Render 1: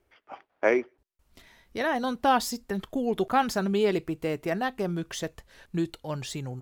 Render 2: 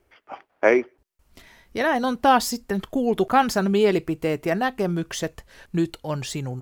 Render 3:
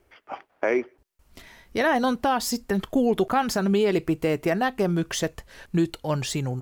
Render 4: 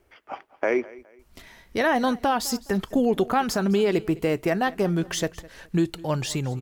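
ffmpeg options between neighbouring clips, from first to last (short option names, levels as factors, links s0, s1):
-af "equalizer=f=3700:t=o:w=0.25:g=-3,volume=1.88"
-af "alimiter=limit=0.188:level=0:latency=1:release=194,volume=1.26"
-af "aecho=1:1:208|416:0.0891|0.0276"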